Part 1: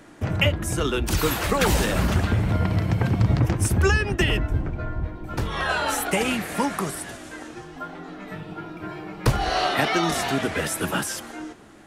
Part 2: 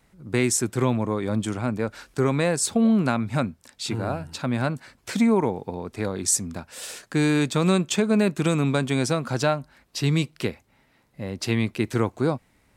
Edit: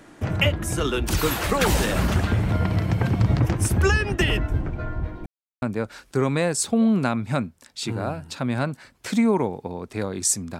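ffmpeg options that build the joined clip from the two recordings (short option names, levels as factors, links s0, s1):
-filter_complex "[0:a]apad=whole_dur=10.59,atrim=end=10.59,asplit=2[s0][s1];[s0]atrim=end=5.26,asetpts=PTS-STARTPTS,afade=t=out:st=5.256:d=0.004:c=hsin[s2];[s1]atrim=start=5.26:end=5.62,asetpts=PTS-STARTPTS,volume=0[s3];[1:a]atrim=start=1.65:end=6.62,asetpts=PTS-STARTPTS,afade=t=in:d=0.004:c=hsin[s4];[s2][s3][s4]concat=n=3:v=0:a=1"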